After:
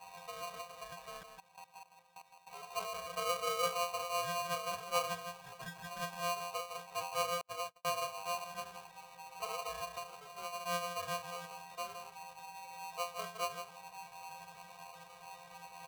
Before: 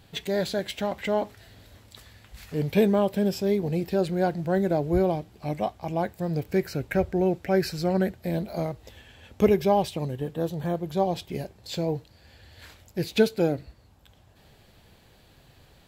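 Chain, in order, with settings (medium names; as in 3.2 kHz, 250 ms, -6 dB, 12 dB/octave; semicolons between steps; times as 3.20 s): one-bit delta coder 16 kbps, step -33.5 dBFS; 3.09–3.72 s: small resonant body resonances 360/640 Hz, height 17 dB, ringing for 35 ms; pitch-class resonator F, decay 0.34 s; 1.23–2.47 s: level held to a coarse grid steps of 17 dB; on a send: delay 162 ms -8.5 dB; 7.41–7.85 s: on the sum: gate -36 dBFS, range -42 dB; in parallel at -3 dB: compression, threshold -46 dBFS, peak gain reduction 19.5 dB; on the sum: polarity switched at an audio rate 870 Hz; trim -4.5 dB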